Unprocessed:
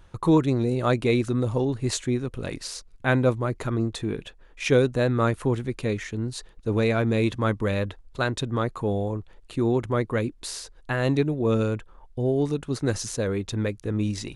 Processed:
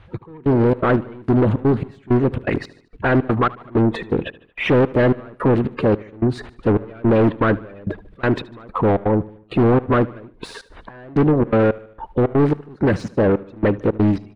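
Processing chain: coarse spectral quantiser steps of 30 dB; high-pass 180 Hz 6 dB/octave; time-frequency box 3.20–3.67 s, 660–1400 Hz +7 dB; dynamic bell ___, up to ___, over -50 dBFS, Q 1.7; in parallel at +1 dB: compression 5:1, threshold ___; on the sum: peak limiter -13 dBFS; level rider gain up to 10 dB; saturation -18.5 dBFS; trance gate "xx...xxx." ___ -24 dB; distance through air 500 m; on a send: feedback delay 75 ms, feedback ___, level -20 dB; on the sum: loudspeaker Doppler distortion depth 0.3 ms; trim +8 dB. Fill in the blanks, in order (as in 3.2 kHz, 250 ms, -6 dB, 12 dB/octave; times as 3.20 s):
3.4 kHz, -4 dB, -40 dBFS, 164 bpm, 50%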